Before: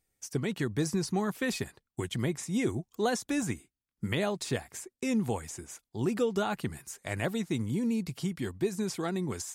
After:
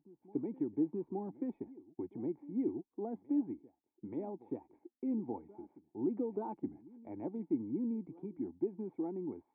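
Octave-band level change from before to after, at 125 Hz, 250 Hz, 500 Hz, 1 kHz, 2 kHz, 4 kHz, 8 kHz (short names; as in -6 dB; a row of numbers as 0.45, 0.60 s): -17.0 dB, -5.0 dB, -8.0 dB, -11.0 dB, under -30 dB, under -40 dB, under -40 dB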